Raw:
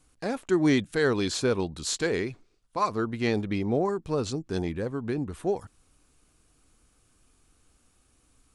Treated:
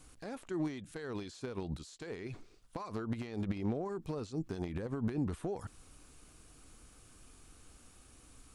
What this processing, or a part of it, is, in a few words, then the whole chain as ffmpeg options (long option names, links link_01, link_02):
de-esser from a sidechain: -filter_complex "[0:a]asplit=2[link_01][link_02];[link_02]highpass=frequency=4900:poles=1,apad=whole_len=376703[link_03];[link_01][link_03]sidechaincompress=threshold=-59dB:ratio=8:attack=0.54:release=57,volume=6dB"